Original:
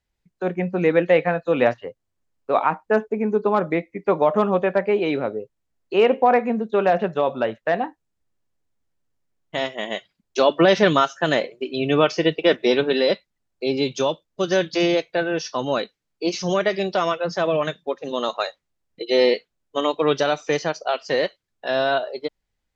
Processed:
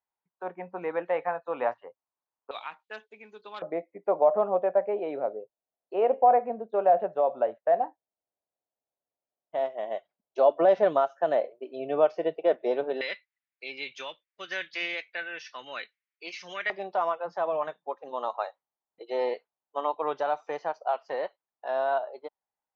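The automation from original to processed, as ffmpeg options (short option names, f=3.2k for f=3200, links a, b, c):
-af "asetnsamples=n=441:p=0,asendcmd='2.51 bandpass f 3500;3.62 bandpass f 670;13.01 bandpass f 2100;16.7 bandpass f 860',bandpass=f=940:t=q:w=3:csg=0"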